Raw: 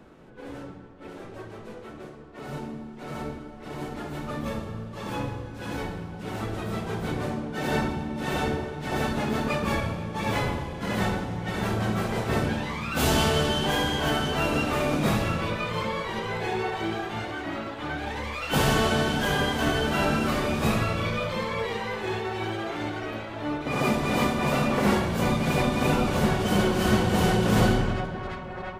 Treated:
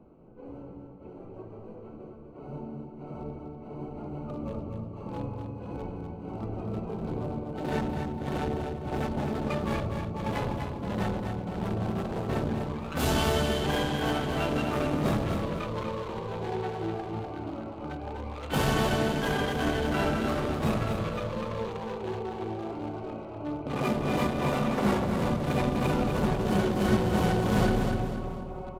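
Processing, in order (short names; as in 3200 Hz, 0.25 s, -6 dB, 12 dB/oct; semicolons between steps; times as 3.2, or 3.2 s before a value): Wiener smoothing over 25 samples; feedback echo 0.247 s, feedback 38%, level -6 dB; gain -3 dB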